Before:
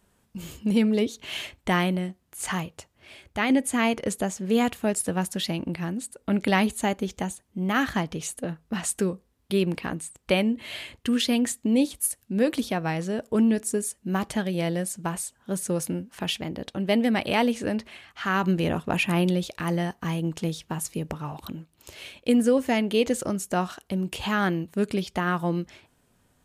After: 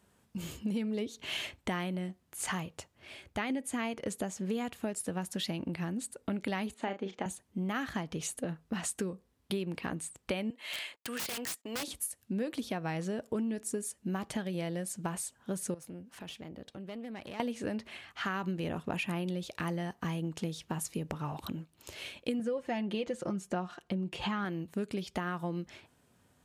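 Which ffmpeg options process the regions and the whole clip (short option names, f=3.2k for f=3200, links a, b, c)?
-filter_complex "[0:a]asettb=1/sr,asplit=3[a][b][c];[a]atrim=end=6.744[d];[b]atrim=start=6.74:end=7.26,asetpts=PTS-STARTPTS,afade=t=in:d=0.004:c=qsin,afade=t=out:st=0.516:d=0.004:c=qsin,highpass=270,lowpass=2.9k,asplit=2[e][f];[f]adelay=36,volume=-8dB[g];[e][g]amix=inputs=2:normalize=0,atrim=end_sample=22932[h];[c]atrim=start=7.256[i];[d][h]acrossfade=d=0.004:c1=hsin:c2=qsin[j];[j][i]acrossfade=d=0.004:c1=qsin:c2=hsin,asettb=1/sr,asplit=3[k][l][m];[k]atrim=end=10.504[n];[l]atrim=start=10.5:end=11.88,asetpts=PTS-STARTPTS,afade=t=in:d=0.004:c=qsin,afade=t=out:st=1.376:d=0.004:c=qsin,highpass=670,agate=range=-21dB:threshold=-55dB:ratio=16:release=100:detection=peak,aeval=exprs='(mod(22.4*val(0)+1,2)-1)/22.4':c=same[o];[m]atrim=start=11.876[p];[n][o]acrossfade=d=0.004:c1=hsin:c2=qsin[q];[q][p]acrossfade=d=0.004:c1=qsin:c2=hsin,asettb=1/sr,asplit=3[r][s][t];[r]atrim=end=15.744[u];[s]atrim=start=15.74:end=17.4,asetpts=PTS-STARTPTS,afade=t=in:d=0.004:c=qsin,afade=t=out:st=1.656:d=0.004:c=qsin,acompressor=threshold=-41dB:ratio=3:attack=3.2:release=140:knee=1:detection=peak,aeval=exprs='(tanh(44.7*val(0)+0.55)-tanh(0.55))/44.7':c=same[v];[t]atrim=start=17.396[w];[u][v]acrossfade=d=0.004:c1=hsin:c2=qsin[x];[x][w]acrossfade=d=0.004:c1=qsin:c2=hsin,asettb=1/sr,asplit=3[y][z][aa];[y]atrim=end=22.394[ab];[z]atrim=start=22.39:end=24.45,asetpts=PTS-STARTPTS,afade=t=in:d=0.004:c=qsin,afade=t=out:st=2.056:d=0.004:c=qsin,aemphasis=mode=reproduction:type=50fm,aecho=1:1:5.7:0.58,atrim=end_sample=90846[ac];[aa]atrim=start=24.446[ad];[ab][ac]acrossfade=d=0.004:c1=hsin:c2=qsin[ae];[ae][ad]acrossfade=d=0.004:c1=qsin:c2=hsin,acompressor=threshold=-30dB:ratio=6,highpass=61,highshelf=f=11k:g=-4,volume=-1.5dB"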